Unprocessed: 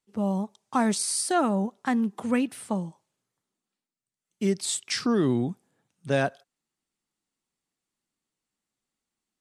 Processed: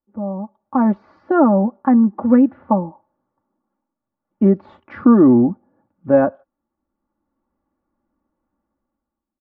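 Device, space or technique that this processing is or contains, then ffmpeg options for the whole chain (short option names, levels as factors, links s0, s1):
action camera in a waterproof case: -filter_complex "[0:a]equalizer=f=67:w=1.5:g=6,aecho=1:1:3.5:0.7,asettb=1/sr,asplit=3[s0][s1][s2];[s0]atrim=end=2.664[s3];[s1]atrim=start=2.66:end=4.49,asetpts=PTS-STARTPTS,afade=t=in:d=0.004:c=qsin,afade=t=out:st=1.826:d=0.004:c=qsin,equalizer=f=920:w=1.6:g=4[s4];[s2]atrim=start=4.486[s5];[s3][s4]acrossfade=d=0.004:c1=hsin:c2=qsin[s6];[s6][s5]acrossfade=d=0.004:c1=qsin:c2=hsin,lowpass=f=1200:w=0.5412,lowpass=f=1200:w=1.3066,dynaudnorm=f=180:g=9:m=5.62" -ar 16000 -c:a aac -b:a 64k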